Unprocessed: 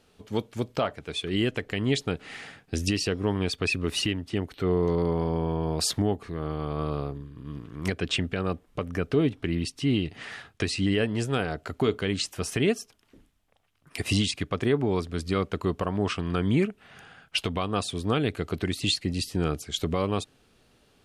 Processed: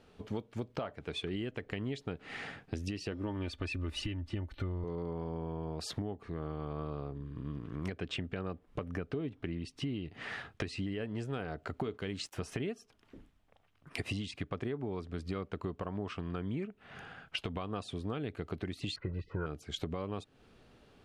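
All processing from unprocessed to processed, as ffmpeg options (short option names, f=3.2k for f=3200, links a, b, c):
-filter_complex "[0:a]asettb=1/sr,asplit=3[a][b][c];[a]atrim=end=3.114[d];[b]atrim=start=3.11:end=4.84,asetpts=PTS-STARTPTS,afade=t=in:d=0.004:c=qsin,afade=t=out:st=1.726:d=0.004:c=qsin,asubboost=boost=11:cutoff=110,aecho=1:1:3.4:0.59,atrim=end_sample=76293[e];[c]atrim=start=4.836[f];[d][e]acrossfade=d=0.004:c1=hsin:c2=qsin[g];[g][f]acrossfade=d=0.004:c1=qsin:c2=hsin,asettb=1/sr,asplit=3[h][i][j];[h]atrim=end=11.944[k];[i]atrim=start=11.94:end=12.36,asetpts=PTS-STARTPTS,afade=t=in:d=0.004:c=qsin,afade=t=out:st=0.416:d=0.004:c=qsin,aeval=exprs='sgn(val(0))*max(abs(val(0))-0.00141,0)':c=same,highshelf=f=4.3k:g=6[l];[j]atrim=start=12.356[m];[k][l]acrossfade=d=0.004:c1=hsin:c2=qsin[n];[n][m]acrossfade=d=0.004:c1=qsin:c2=hsin,asettb=1/sr,asplit=3[o][p][q];[o]atrim=end=18.964[r];[p]atrim=start=18.96:end=19.46,asetpts=PTS-STARTPTS,afade=t=in:d=0.004:c=qsin,afade=t=out:st=0.496:d=0.004:c=qsin,lowpass=f=1.3k:t=q:w=6.1,aecho=1:1:2:0.77,atrim=end_sample=22050[s];[q]atrim=start=19.456[t];[r][s]acrossfade=d=0.004:c1=hsin:c2=qsin[u];[u][t]acrossfade=d=0.004:c1=qsin:c2=hsin,lowpass=f=2.3k:p=1,acompressor=threshold=-37dB:ratio=6,volume=2dB"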